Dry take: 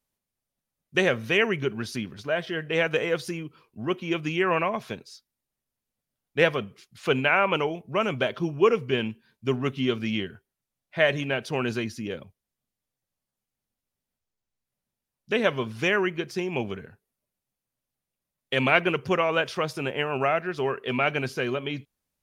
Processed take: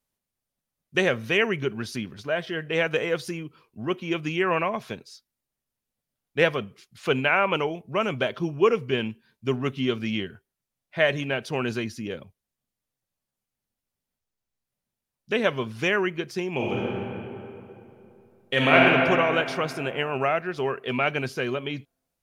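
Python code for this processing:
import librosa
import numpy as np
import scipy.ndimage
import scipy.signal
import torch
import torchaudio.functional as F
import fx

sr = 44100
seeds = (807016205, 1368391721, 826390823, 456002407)

y = fx.reverb_throw(x, sr, start_s=16.55, length_s=2.26, rt60_s=2.9, drr_db=-4.5)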